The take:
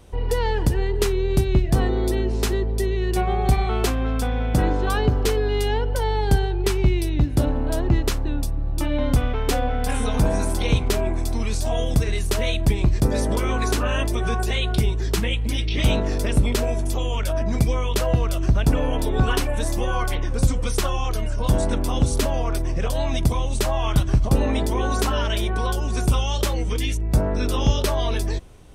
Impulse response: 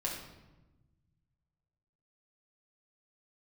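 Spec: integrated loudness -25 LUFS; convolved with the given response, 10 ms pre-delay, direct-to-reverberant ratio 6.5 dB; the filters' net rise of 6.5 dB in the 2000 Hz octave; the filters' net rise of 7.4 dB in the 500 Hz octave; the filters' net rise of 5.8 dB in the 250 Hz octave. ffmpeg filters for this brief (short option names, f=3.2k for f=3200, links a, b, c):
-filter_complex "[0:a]equalizer=f=250:t=o:g=5,equalizer=f=500:t=o:g=7.5,equalizer=f=2k:t=o:g=8,asplit=2[a][b];[1:a]atrim=start_sample=2205,adelay=10[c];[b][c]afir=irnorm=-1:irlink=0,volume=-9.5dB[d];[a][d]amix=inputs=2:normalize=0,volume=-6.5dB"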